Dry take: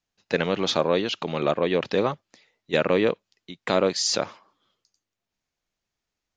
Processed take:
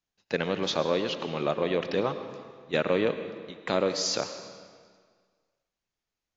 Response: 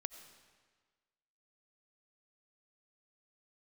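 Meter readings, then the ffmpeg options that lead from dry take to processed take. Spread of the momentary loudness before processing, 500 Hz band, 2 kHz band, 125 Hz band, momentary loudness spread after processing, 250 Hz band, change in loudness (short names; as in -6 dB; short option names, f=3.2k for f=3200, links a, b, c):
7 LU, -4.0 dB, -4.0 dB, -4.0 dB, 13 LU, -4.0 dB, -4.5 dB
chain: -filter_complex "[1:a]atrim=start_sample=2205,asetrate=37044,aresample=44100[a];[0:a][a]afir=irnorm=-1:irlink=0,volume=-2.5dB" -ar 16000 -c:a aac -b:a 48k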